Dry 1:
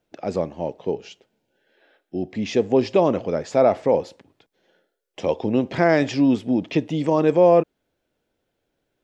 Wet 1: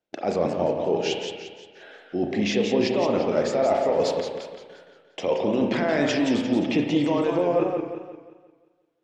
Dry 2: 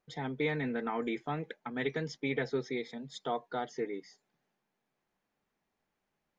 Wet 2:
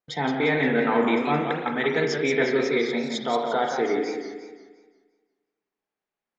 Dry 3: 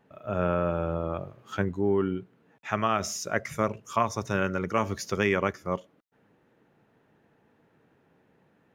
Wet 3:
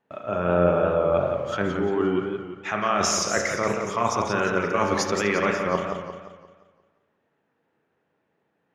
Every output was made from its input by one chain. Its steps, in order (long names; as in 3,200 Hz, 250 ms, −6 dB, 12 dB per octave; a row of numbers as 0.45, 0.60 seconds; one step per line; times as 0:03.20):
low-pass filter 7,900 Hz 12 dB per octave
low-shelf EQ 170 Hz −11.5 dB
noise gate with hold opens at −53 dBFS
brickwall limiter −16 dBFS
reversed playback
downward compressor 6 to 1, threshold −34 dBFS
reversed playback
pitch vibrato 2 Hz 13 cents
spring reverb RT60 1 s, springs 34 ms, chirp 40 ms, DRR 4 dB
feedback echo with a swinging delay time 175 ms, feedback 44%, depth 134 cents, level −6.5 dB
loudness normalisation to −24 LKFS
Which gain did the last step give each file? +12.5, +13.5, +13.0 decibels